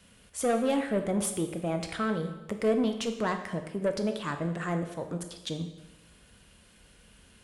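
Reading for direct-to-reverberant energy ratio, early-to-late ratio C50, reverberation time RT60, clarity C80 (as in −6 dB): 6.0 dB, 8.5 dB, 1.0 s, 10.5 dB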